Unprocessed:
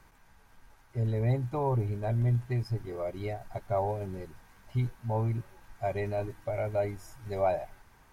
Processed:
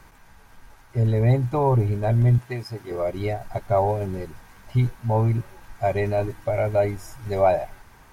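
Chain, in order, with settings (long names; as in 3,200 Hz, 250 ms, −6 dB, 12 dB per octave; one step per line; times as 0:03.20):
0:02.38–0:02.91: high-pass filter 440 Hz 6 dB per octave
level +9 dB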